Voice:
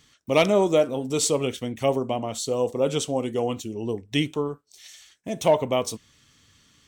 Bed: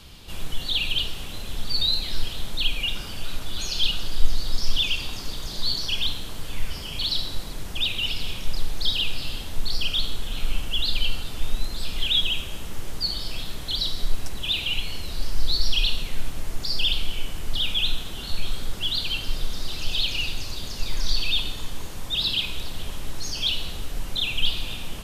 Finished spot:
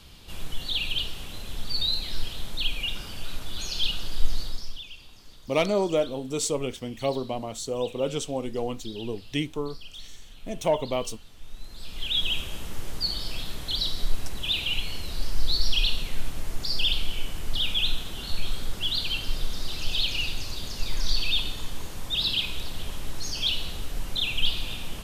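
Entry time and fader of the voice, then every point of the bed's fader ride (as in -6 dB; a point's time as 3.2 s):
5.20 s, -4.5 dB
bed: 4.41 s -3.5 dB
4.84 s -18.5 dB
11.39 s -18.5 dB
12.32 s -1.5 dB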